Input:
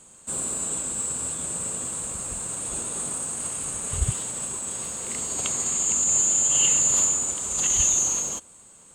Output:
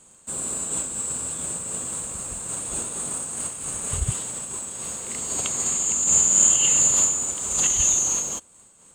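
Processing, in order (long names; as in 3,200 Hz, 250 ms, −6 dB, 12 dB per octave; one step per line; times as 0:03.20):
in parallel at −5 dB: dead-zone distortion −44 dBFS
0:06.02–0:06.56: on the sum: flutter between parallel walls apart 8.7 metres, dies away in 1.3 s
amplitude modulation by smooth noise, depth 60%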